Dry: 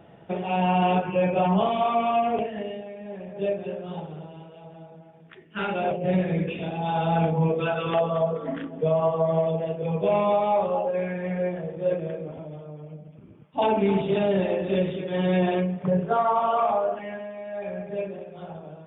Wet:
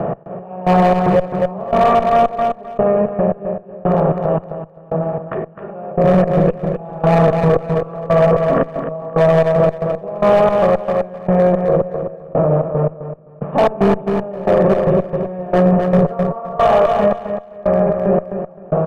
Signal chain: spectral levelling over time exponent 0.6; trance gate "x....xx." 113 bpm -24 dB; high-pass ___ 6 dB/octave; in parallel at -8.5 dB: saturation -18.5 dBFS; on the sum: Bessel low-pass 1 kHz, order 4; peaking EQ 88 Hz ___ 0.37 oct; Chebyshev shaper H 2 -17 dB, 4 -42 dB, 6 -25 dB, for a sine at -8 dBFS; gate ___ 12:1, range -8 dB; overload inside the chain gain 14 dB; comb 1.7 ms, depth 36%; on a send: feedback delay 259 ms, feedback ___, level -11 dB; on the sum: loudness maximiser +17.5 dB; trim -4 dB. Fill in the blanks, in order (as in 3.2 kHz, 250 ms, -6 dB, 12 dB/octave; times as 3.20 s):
46 Hz, -8 dB, -45 dBFS, 19%